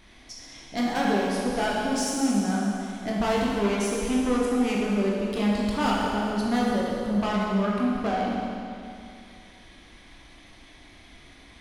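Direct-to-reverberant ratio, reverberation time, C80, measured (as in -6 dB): -4.5 dB, 2.6 s, 0.0 dB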